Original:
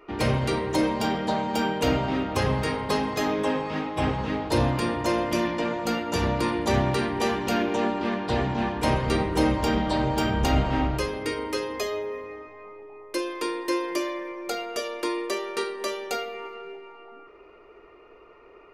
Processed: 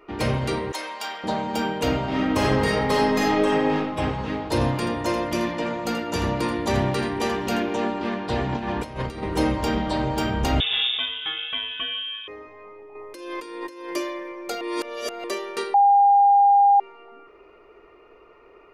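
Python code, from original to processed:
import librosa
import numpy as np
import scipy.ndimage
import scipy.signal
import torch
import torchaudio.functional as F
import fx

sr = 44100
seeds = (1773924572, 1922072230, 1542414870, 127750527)

y = fx.highpass(x, sr, hz=1000.0, slope=12, at=(0.72, 1.24))
y = fx.reverb_throw(y, sr, start_s=2.07, length_s=1.68, rt60_s=0.99, drr_db=-2.5)
y = fx.echo_single(y, sr, ms=82, db=-10.5, at=(4.53, 7.6))
y = fx.over_compress(y, sr, threshold_db=-28.0, ratio=-0.5, at=(8.49, 9.23))
y = fx.freq_invert(y, sr, carrier_hz=3600, at=(10.6, 12.28))
y = fx.over_compress(y, sr, threshold_db=-36.0, ratio=-1.0, at=(12.95, 13.9))
y = fx.edit(y, sr, fx.reverse_span(start_s=14.61, length_s=0.63),
    fx.bleep(start_s=15.74, length_s=1.06, hz=805.0, db=-12.0), tone=tone)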